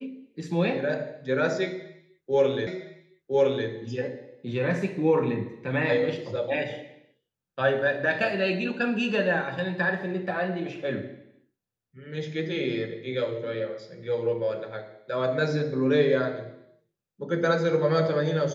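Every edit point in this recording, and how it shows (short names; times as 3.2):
2.67 repeat of the last 1.01 s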